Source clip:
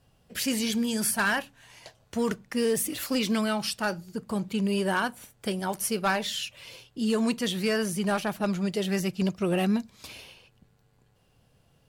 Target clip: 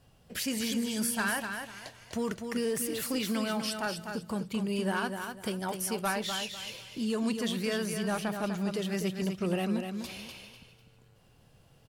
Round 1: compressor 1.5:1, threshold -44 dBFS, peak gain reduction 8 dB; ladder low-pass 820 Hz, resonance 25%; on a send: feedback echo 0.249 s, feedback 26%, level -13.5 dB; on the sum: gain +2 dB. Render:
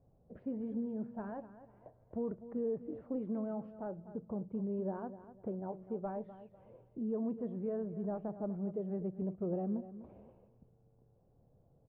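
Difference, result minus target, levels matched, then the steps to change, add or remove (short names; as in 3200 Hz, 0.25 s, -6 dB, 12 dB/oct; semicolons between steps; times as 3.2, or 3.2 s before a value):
echo-to-direct -7 dB; 1000 Hz band -4.5 dB
change: feedback echo 0.249 s, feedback 26%, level -6.5 dB; remove: ladder low-pass 820 Hz, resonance 25%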